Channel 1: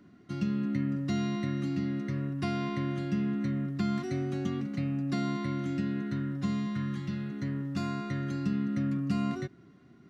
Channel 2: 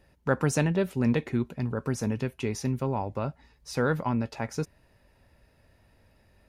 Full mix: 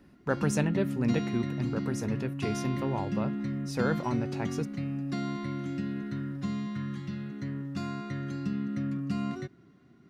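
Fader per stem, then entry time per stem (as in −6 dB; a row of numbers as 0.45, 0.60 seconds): −2.0, −3.5 decibels; 0.00, 0.00 seconds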